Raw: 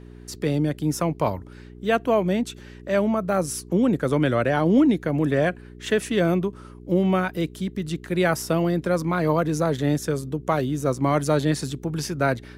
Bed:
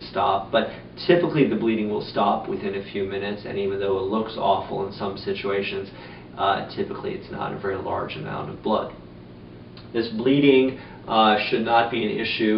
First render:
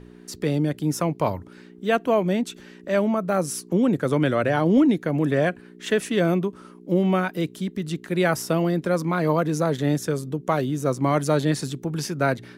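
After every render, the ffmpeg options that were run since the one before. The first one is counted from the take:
-af "bandreject=f=60:t=h:w=4,bandreject=f=120:t=h:w=4"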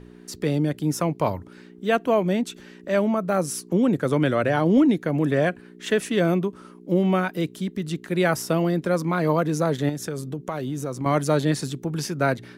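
-filter_complex "[0:a]asettb=1/sr,asplit=3[a][b][c];[a]atrim=end=9.894[d];[b]atrim=start=9.89:end=11.06,asetpts=PTS-STARTPTS,afade=t=in:d=0.004:c=qsin,afade=t=out:st=1.166:d=0.004:c=qsin,acompressor=threshold=-24dB:ratio=6:attack=3.2:release=140:knee=1:detection=peak[e];[c]atrim=start=11.056[f];[d][e]acrossfade=d=0.004:c1=hsin:c2=qsin[g];[g][f]acrossfade=d=0.004:c1=qsin:c2=hsin"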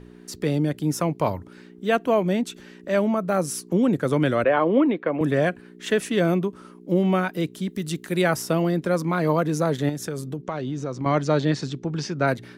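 -filter_complex "[0:a]asettb=1/sr,asplit=3[a][b][c];[a]atrim=end=4.444[d];[b]atrim=start=4.44:end=5.21,asetpts=PTS-STARTPTS,afade=t=in:d=0.004:c=qsin,afade=t=out:st=0.766:d=0.004:c=qsin,highpass=280,equalizer=f=530:t=q:w=4:g=6,equalizer=f=1.1k:t=q:w=4:g=8,equalizer=f=2.4k:t=q:w=4:g=3,lowpass=f=3.2k:w=0.5412,lowpass=f=3.2k:w=1.3066[e];[c]atrim=start=5.206[f];[d][e]acrossfade=d=0.004:c1=hsin:c2=qsin[g];[g][f]acrossfade=d=0.004:c1=qsin:c2=hsin,asettb=1/sr,asplit=3[h][i][j];[h]atrim=end=7.684[k];[i]atrim=start=7.68:end=8.22,asetpts=PTS-STARTPTS,afade=t=in:d=0.004:c=qsin,afade=t=out:st=0.536:d=0.004:c=qsin,aemphasis=mode=production:type=cd[l];[j]atrim=start=8.216[m];[k][l]acrossfade=d=0.004:c1=hsin:c2=qsin[n];[n][m]acrossfade=d=0.004:c1=qsin:c2=hsin,asplit=3[o][p][q];[o]afade=t=out:st=10.41:d=0.02[r];[p]lowpass=f=6.1k:w=0.5412,lowpass=f=6.1k:w=1.3066,afade=t=in:st=10.41:d=0.02,afade=t=out:st=12.26:d=0.02[s];[q]afade=t=in:st=12.26:d=0.02[t];[r][s][t]amix=inputs=3:normalize=0"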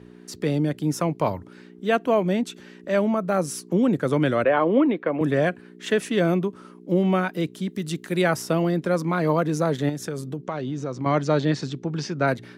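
-af "highpass=86,highshelf=f=10k:g=-6"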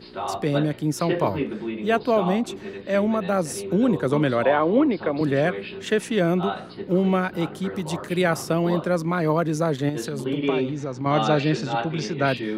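-filter_complex "[1:a]volume=-8dB[a];[0:a][a]amix=inputs=2:normalize=0"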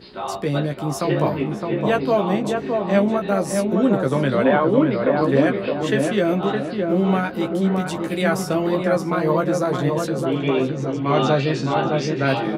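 -filter_complex "[0:a]asplit=2[a][b];[b]adelay=15,volume=-5dB[c];[a][c]amix=inputs=2:normalize=0,asplit=2[d][e];[e]adelay=614,lowpass=f=1.4k:p=1,volume=-3dB,asplit=2[f][g];[g]adelay=614,lowpass=f=1.4k:p=1,volume=0.48,asplit=2[h][i];[i]adelay=614,lowpass=f=1.4k:p=1,volume=0.48,asplit=2[j][k];[k]adelay=614,lowpass=f=1.4k:p=1,volume=0.48,asplit=2[l][m];[m]adelay=614,lowpass=f=1.4k:p=1,volume=0.48,asplit=2[n][o];[o]adelay=614,lowpass=f=1.4k:p=1,volume=0.48[p];[f][h][j][l][n][p]amix=inputs=6:normalize=0[q];[d][q]amix=inputs=2:normalize=0"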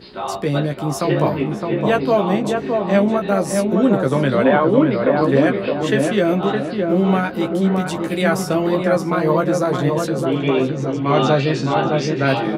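-af "volume=2.5dB,alimiter=limit=-3dB:level=0:latency=1"

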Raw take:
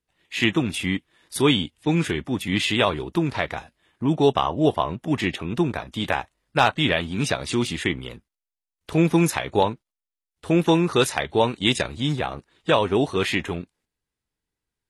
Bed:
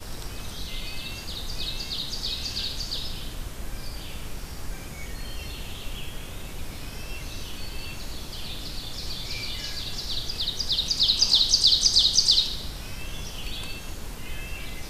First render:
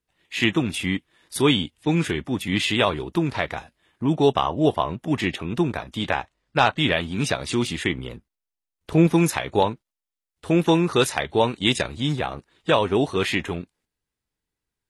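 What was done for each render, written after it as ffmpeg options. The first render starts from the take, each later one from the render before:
-filter_complex "[0:a]asettb=1/sr,asplit=3[a][b][c];[a]atrim=end=6.044[d];[b]atrim=start=6.04:end=6.77,asetpts=PTS-STARTPTS,afade=t=in:d=0.004:c=qsin,afade=t=out:st=0.726:d=0.004:c=qsin,lowpass=6.8k[e];[c]atrim=start=6.766[f];[d][e]acrossfade=d=0.004:c1=hsin:c2=qsin[g];[g][f]acrossfade=d=0.004:c1=qsin:c2=hsin,asettb=1/sr,asplit=3[h][i][j];[h]atrim=end=7.984[k];[i]atrim=start=7.98:end=9.07,asetpts=PTS-STARTPTS,afade=t=in:d=0.004:c=qsin,afade=t=out:st=1.086:d=0.004:c=qsin,tiltshelf=f=970:g=3[l];[j]atrim=start=9.066[m];[k][l]acrossfade=d=0.004:c1=hsin:c2=qsin[n];[n][m]acrossfade=d=0.004:c1=qsin:c2=hsin"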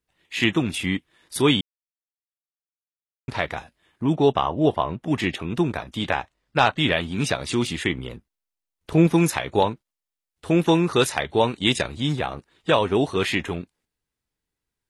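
-filter_complex "[0:a]asettb=1/sr,asplit=3[a][b][c];[a]atrim=end=4.164[d];[b]atrim=start=4.16:end=5.06,asetpts=PTS-STARTPTS,afade=t=in:d=0.004:c=qsin,afade=t=out:st=0.896:d=0.004:c=qsin,lowpass=f=3.5k:p=1[e];[c]atrim=start=5.056[f];[d][e]acrossfade=d=0.004:c1=hsin:c2=qsin[g];[g][f]acrossfade=d=0.004:c1=qsin:c2=hsin,asplit=3[h][i][j];[h]atrim=end=1.61,asetpts=PTS-STARTPTS,afade=t=out:st=1.606:d=0.004:c=hsin[k];[i]atrim=start=1.61:end=3.28,asetpts=PTS-STARTPTS,volume=0[l];[j]atrim=start=3.28,asetpts=PTS-STARTPTS,afade=t=in:d=0.004:c=hsin[m];[k][l][m]concat=n=3:v=0:a=1"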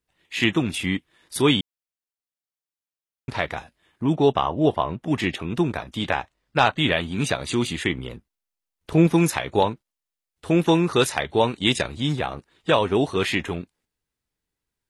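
-filter_complex "[0:a]asettb=1/sr,asplit=3[a][b][c];[a]atrim=end=6.634[d];[b]atrim=start=6.63:end=7.78,asetpts=PTS-STARTPTS,afade=t=in:d=0.004:c=qsin,afade=t=out:st=1.146:d=0.004:c=qsin,asuperstop=centerf=5300:order=8:qfactor=7.4[e];[c]atrim=start=7.776[f];[d][e]acrossfade=d=0.004:c1=hsin:c2=qsin[g];[g][f]acrossfade=d=0.004:c1=qsin:c2=hsin"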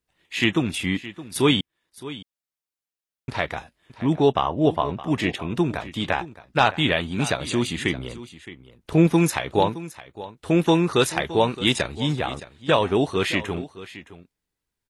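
-af "aecho=1:1:617:0.158"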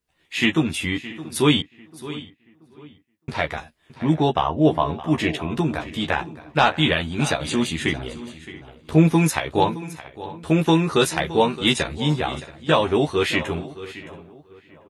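-filter_complex "[0:a]asplit=2[a][b];[b]adelay=13,volume=-4dB[c];[a][c]amix=inputs=2:normalize=0,asplit=2[d][e];[e]adelay=680,lowpass=f=2.4k:p=1,volume=-19dB,asplit=2[f][g];[g]adelay=680,lowpass=f=2.4k:p=1,volume=0.43,asplit=2[h][i];[i]adelay=680,lowpass=f=2.4k:p=1,volume=0.43[j];[d][f][h][j]amix=inputs=4:normalize=0"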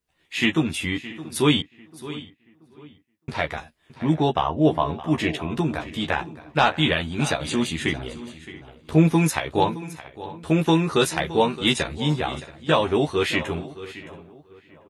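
-af "volume=-1.5dB"

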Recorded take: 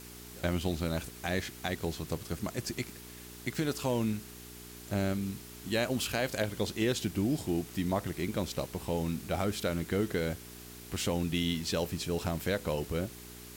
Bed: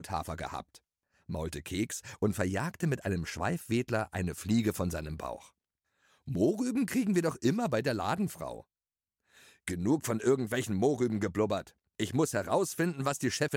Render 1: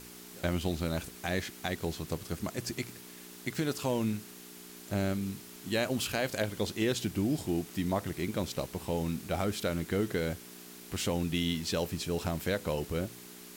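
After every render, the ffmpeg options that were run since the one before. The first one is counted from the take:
-af "bandreject=f=60:t=h:w=4,bandreject=f=120:t=h:w=4"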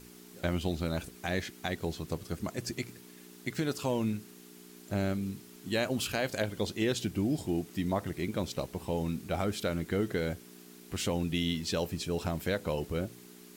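-af "afftdn=nr=6:nf=-49"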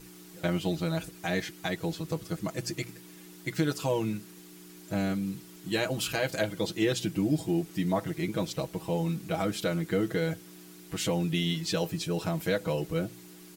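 -af "aecho=1:1:6.2:0.89"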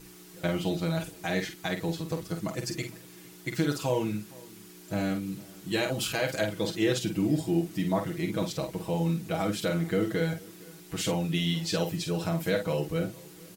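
-filter_complex "[0:a]asplit=2[a][b];[b]adelay=48,volume=-7dB[c];[a][c]amix=inputs=2:normalize=0,asplit=2[d][e];[e]adelay=460.6,volume=-23dB,highshelf=f=4k:g=-10.4[f];[d][f]amix=inputs=2:normalize=0"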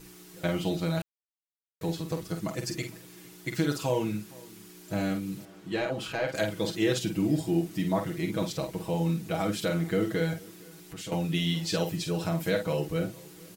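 -filter_complex "[0:a]asettb=1/sr,asplit=3[a][b][c];[a]atrim=end=5.454[d];[b]atrim=start=5.45:end=6.35,asetpts=PTS-STARTPTS,afade=t=in:d=0.004:c=qsin,afade=t=out:st=0.896:d=0.004:c=qsin,asplit=2[e][f];[f]highpass=f=720:p=1,volume=10dB,asoftclip=type=tanh:threshold=-16.5dB[g];[e][g]amix=inputs=2:normalize=0,lowpass=f=1k:p=1,volume=-6dB[h];[c]atrim=start=6.346[i];[d][h]acrossfade=d=0.004:c1=hsin:c2=qsin[j];[j][i]acrossfade=d=0.004:c1=qsin:c2=hsin,asettb=1/sr,asplit=3[k][l][m];[k]atrim=end=10.504[n];[l]atrim=start=10.5:end=11.12,asetpts=PTS-STARTPTS,afade=t=in:d=0.004:c=qsin,afade=t=out:st=0.616:d=0.004:c=qsin,acompressor=threshold=-44dB:ratio=2:attack=3.2:release=140:knee=1:detection=peak[o];[m]atrim=start=11.116[p];[n][o]acrossfade=d=0.004:c1=hsin:c2=qsin[q];[q][p]acrossfade=d=0.004:c1=qsin:c2=hsin,asplit=3[r][s][t];[r]atrim=end=1.02,asetpts=PTS-STARTPTS,afade=t=out:st=1.016:d=0.004:c=hsin[u];[s]atrim=start=1.02:end=1.81,asetpts=PTS-STARTPTS,volume=0[v];[t]atrim=start=1.81,asetpts=PTS-STARTPTS,afade=t=in:d=0.004:c=hsin[w];[u][v][w]concat=n=3:v=0:a=1"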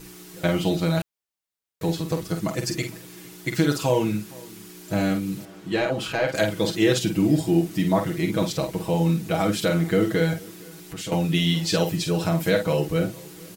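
-af "volume=6.5dB"

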